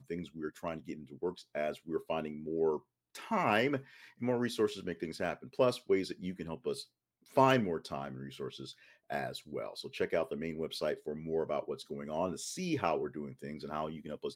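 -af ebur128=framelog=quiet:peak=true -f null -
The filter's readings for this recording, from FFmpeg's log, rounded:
Integrated loudness:
  I:         -35.8 LUFS
  Threshold: -46.1 LUFS
Loudness range:
  LRA:         4.7 LU
  Threshold: -55.6 LUFS
  LRA low:   -38.4 LUFS
  LRA high:  -33.7 LUFS
True peak:
  Peak:      -11.6 dBFS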